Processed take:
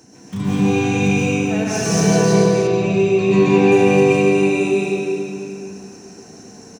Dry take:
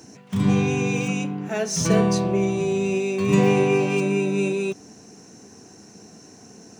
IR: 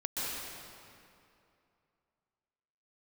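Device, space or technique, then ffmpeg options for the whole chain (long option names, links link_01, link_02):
cave: -filter_complex "[0:a]aecho=1:1:263:0.355[link_01];[1:a]atrim=start_sample=2205[link_02];[link_01][link_02]afir=irnorm=-1:irlink=0,asettb=1/sr,asplit=3[link_03][link_04][link_05];[link_03]atrim=end=2.674[link_06];[link_04]atrim=start=2.67:end=3.72,asetpts=PTS-STARTPTS,afade=type=in:duration=0.004:curve=qsin,afade=type=out:start_time=1.046:duration=0.004:curve=qsin,lowpass=5200[link_07];[link_05]atrim=start=3.716[link_08];[link_06][link_07]acrossfade=duration=0.004:curve1=hsin:curve2=qsin[link_09];[link_09][link_08]acrossfade=duration=0.004:curve1=qsin:curve2=hsin"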